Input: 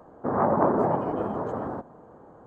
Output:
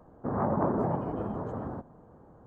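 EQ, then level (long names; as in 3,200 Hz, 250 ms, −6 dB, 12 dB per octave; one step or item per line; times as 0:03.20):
bass and treble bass +7 dB, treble 0 dB
low-shelf EQ 75 Hz +7.5 dB
−7.5 dB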